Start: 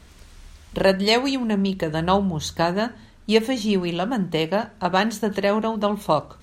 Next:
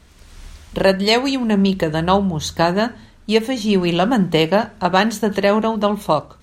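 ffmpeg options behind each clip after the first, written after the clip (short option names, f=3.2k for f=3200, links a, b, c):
-af "dynaudnorm=f=110:g=7:m=13dB,volume=-1dB"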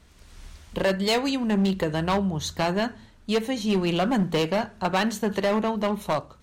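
-af "volume=11.5dB,asoftclip=hard,volume=-11.5dB,volume=-6dB"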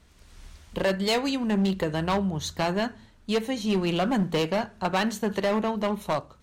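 -af "aeval=exprs='0.141*(cos(1*acos(clip(val(0)/0.141,-1,1)))-cos(1*PI/2))+0.00251*(cos(7*acos(clip(val(0)/0.141,-1,1)))-cos(7*PI/2))':c=same,volume=-1.5dB"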